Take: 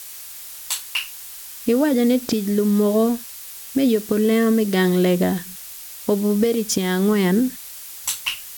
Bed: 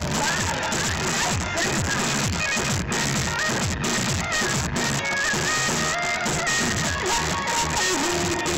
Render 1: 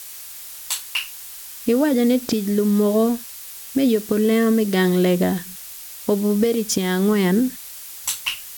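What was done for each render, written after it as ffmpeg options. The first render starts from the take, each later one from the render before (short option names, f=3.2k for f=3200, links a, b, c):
-af anull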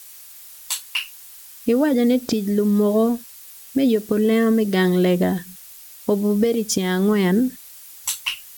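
-af "afftdn=nr=7:nf=-37"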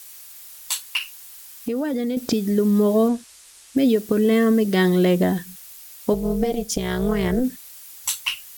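-filter_complex "[0:a]asettb=1/sr,asplit=3[a][b][c];[a]atrim=end=0.974[d];[b]atrim=start=0.97:end=2.17,asetpts=PTS-STARTPTS,afade=t=in:d=0.004:c=qsin,afade=t=out:st=1.196:d=0.004:c=qsin,acompressor=threshold=-21dB:ratio=6:attack=3.2:release=140:knee=1:detection=peak[e];[c]atrim=start=2.166[f];[d][e]acrossfade=d=0.004:c1=hsin:c2=qsin[g];[g][f]acrossfade=d=0.004:c1=qsin:c2=hsin,asettb=1/sr,asplit=3[h][i][j];[h]atrim=end=3.084[k];[i]atrim=start=3.08:end=3.77,asetpts=PTS-STARTPTS,afade=t=in:d=0.004:c=qsin,afade=t=out:st=0.686:d=0.004:c=qsin,lowpass=f=10k:w=0.5412,lowpass=f=10k:w=1.3066[l];[j]atrim=start=3.766[m];[k][l]acrossfade=d=0.004:c1=hsin:c2=qsin[n];[n][m]acrossfade=d=0.004:c1=qsin:c2=hsin,asplit=3[o][p][q];[o]afade=t=out:st=6.12:d=0.02[r];[p]tremolo=f=250:d=0.824,afade=t=in:st=6.12:d=0.02,afade=t=out:st=7.43:d=0.02[s];[q]afade=t=in:st=7.43:d=0.02[t];[r][s][t]amix=inputs=3:normalize=0"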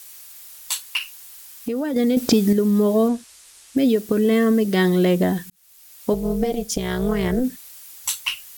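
-filter_complex "[0:a]asettb=1/sr,asplit=3[a][b][c];[a]atrim=end=1.964[d];[b]atrim=start=1.96:end=2.53,asetpts=PTS-STARTPTS,afade=t=in:d=0.004:c=qsin,afade=t=out:st=0.566:d=0.004:c=qsin,acontrast=50[e];[c]atrim=start=2.526[f];[d][e]acrossfade=d=0.004:c1=hsin:c2=qsin[g];[g][f]acrossfade=d=0.004:c1=qsin:c2=hsin,asplit=2[h][i];[h]atrim=end=5.5,asetpts=PTS-STARTPTS,afade=t=out:st=5.496:d=0.004:c=hsin[j];[i]atrim=start=5.5,asetpts=PTS-STARTPTS,afade=t=in:d=0.64[k];[j][k]concat=n=2:v=0:a=1"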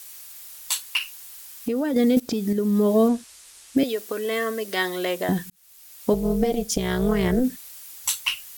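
-filter_complex "[0:a]asettb=1/sr,asplit=3[a][b][c];[a]atrim=end=3.834[d];[b]atrim=start=3.83:end=5.29,asetpts=PTS-STARTPTS,afade=t=in:d=0.004:c=qsin,afade=t=out:st=1.456:d=0.004:c=qsin,highpass=610[e];[c]atrim=start=5.286[f];[d][e]acrossfade=d=0.004:c1=hsin:c2=qsin[g];[g][f]acrossfade=d=0.004:c1=qsin:c2=hsin,asplit=2[h][i];[h]atrim=end=2.2,asetpts=PTS-STARTPTS,afade=t=out:st=2.196:d=0.004:c=hsin:silence=0.16788[j];[i]atrim=start=2.2,asetpts=PTS-STARTPTS,afade=t=in:d=0.82:silence=0.16788[k];[j][k]concat=n=2:v=0:a=1"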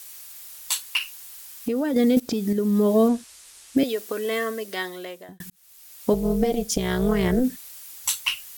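-filter_complex "[0:a]asplit=2[a][b];[a]atrim=end=5.4,asetpts=PTS-STARTPTS,afade=t=out:st=4.33:d=1.07[c];[b]atrim=start=5.4,asetpts=PTS-STARTPTS,afade=t=in:d=0.004:c=hsin[d];[c][d]concat=n=2:v=0:a=1"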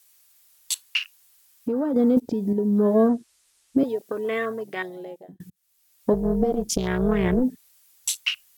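-af "afwtdn=0.0224"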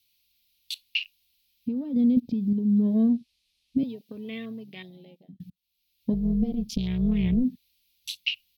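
-af "firequalizer=gain_entry='entry(240,0);entry(340,-15);entry(1500,-27);entry(2400,-3);entry(4100,-1);entry(7400,-23);entry(13000,-12)':delay=0.05:min_phase=1"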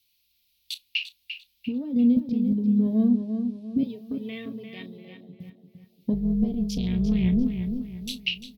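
-filter_complex "[0:a]asplit=2[a][b];[b]adelay=33,volume=-13.5dB[c];[a][c]amix=inputs=2:normalize=0,asplit=2[d][e];[e]adelay=346,lowpass=f=3.6k:p=1,volume=-7dB,asplit=2[f][g];[g]adelay=346,lowpass=f=3.6k:p=1,volume=0.39,asplit=2[h][i];[i]adelay=346,lowpass=f=3.6k:p=1,volume=0.39,asplit=2[j][k];[k]adelay=346,lowpass=f=3.6k:p=1,volume=0.39,asplit=2[l][m];[m]adelay=346,lowpass=f=3.6k:p=1,volume=0.39[n];[d][f][h][j][l][n]amix=inputs=6:normalize=0"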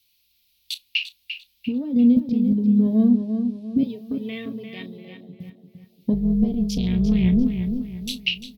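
-af "volume=4dB"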